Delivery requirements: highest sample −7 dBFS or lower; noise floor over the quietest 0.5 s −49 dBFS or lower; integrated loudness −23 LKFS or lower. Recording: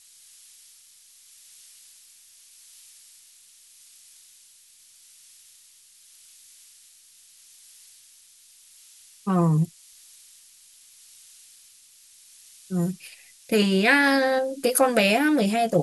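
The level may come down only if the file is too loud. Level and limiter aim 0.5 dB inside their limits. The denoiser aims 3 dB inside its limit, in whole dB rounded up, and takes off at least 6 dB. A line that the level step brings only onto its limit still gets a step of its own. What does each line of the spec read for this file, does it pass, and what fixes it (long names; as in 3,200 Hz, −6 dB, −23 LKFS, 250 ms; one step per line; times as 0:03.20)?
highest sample −5.0 dBFS: out of spec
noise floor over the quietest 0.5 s −54 dBFS: in spec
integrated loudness −22.0 LKFS: out of spec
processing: level −1.5 dB
brickwall limiter −7.5 dBFS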